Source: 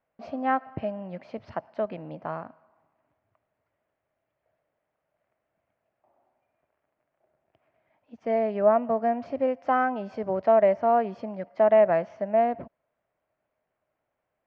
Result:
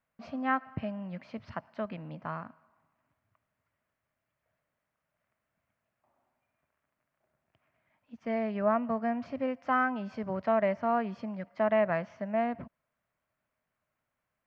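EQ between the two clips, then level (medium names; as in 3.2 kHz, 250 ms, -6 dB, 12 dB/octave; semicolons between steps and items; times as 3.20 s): high-order bell 510 Hz -8.5 dB; 0.0 dB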